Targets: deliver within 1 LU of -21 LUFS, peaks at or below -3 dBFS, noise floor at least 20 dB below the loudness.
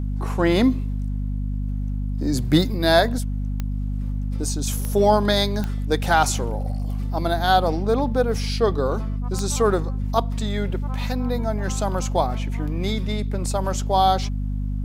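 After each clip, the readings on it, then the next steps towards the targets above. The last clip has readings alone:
clicks found 4; hum 50 Hz; highest harmonic 250 Hz; hum level -23 dBFS; loudness -23.0 LUFS; peak level -3.0 dBFS; loudness target -21.0 LUFS
-> de-click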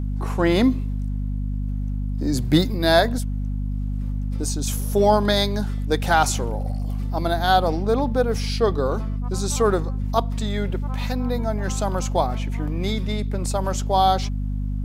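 clicks found 0; hum 50 Hz; highest harmonic 250 Hz; hum level -23 dBFS
-> hum notches 50/100/150/200/250 Hz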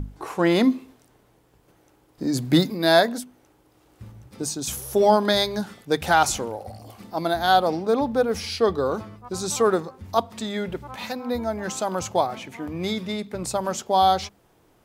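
hum not found; loudness -23.5 LUFS; peak level -3.5 dBFS; loudness target -21.0 LUFS
-> trim +2.5 dB; peak limiter -3 dBFS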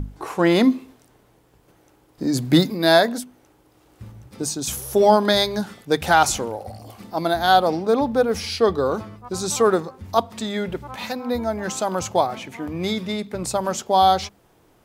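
loudness -21.0 LUFS; peak level -3.0 dBFS; noise floor -58 dBFS

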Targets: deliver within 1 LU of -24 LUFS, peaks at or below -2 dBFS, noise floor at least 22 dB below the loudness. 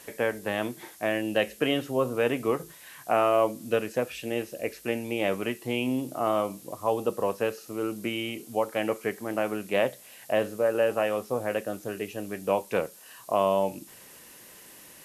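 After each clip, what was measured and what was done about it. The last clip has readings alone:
noise floor -50 dBFS; noise floor target -51 dBFS; loudness -28.5 LUFS; peak level -10.0 dBFS; loudness target -24.0 LUFS
-> noise print and reduce 6 dB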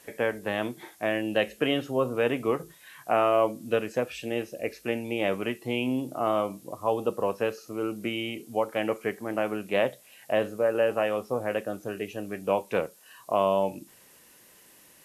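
noise floor -56 dBFS; loudness -28.5 LUFS; peak level -10.0 dBFS; loudness target -24.0 LUFS
-> trim +4.5 dB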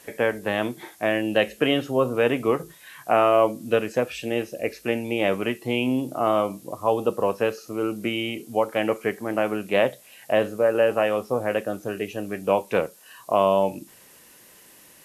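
loudness -24.0 LUFS; peak level -5.5 dBFS; noise floor -51 dBFS

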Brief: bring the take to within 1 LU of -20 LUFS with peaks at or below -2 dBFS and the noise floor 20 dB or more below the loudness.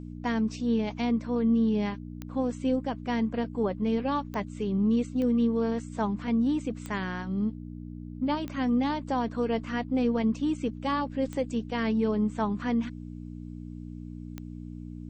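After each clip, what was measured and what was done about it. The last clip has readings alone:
clicks found 7; hum 60 Hz; highest harmonic 300 Hz; hum level -38 dBFS; loudness -28.5 LUFS; peak level -16.0 dBFS; loudness target -20.0 LUFS
-> de-click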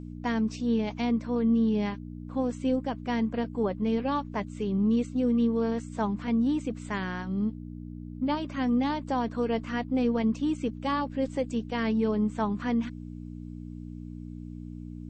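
clicks found 0; hum 60 Hz; highest harmonic 300 Hz; hum level -38 dBFS
-> de-hum 60 Hz, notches 5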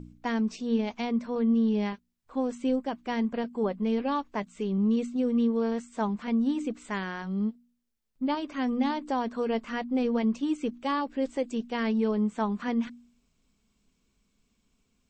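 hum not found; loudness -29.5 LUFS; peak level -15.5 dBFS; loudness target -20.0 LUFS
-> trim +9.5 dB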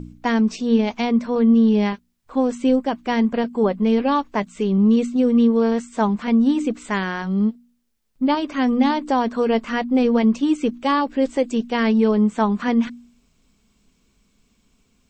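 loudness -20.0 LUFS; peak level -6.0 dBFS; noise floor -64 dBFS

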